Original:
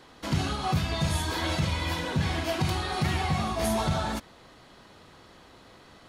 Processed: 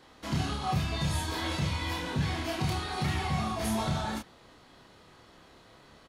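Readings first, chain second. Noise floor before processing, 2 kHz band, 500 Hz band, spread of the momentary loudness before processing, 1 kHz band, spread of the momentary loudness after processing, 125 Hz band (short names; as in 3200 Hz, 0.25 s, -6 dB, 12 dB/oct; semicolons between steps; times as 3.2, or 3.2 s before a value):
-54 dBFS, -3.5 dB, -5.5 dB, 3 LU, -3.0 dB, 3 LU, -3.0 dB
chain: doubler 28 ms -3 dB; gain -5 dB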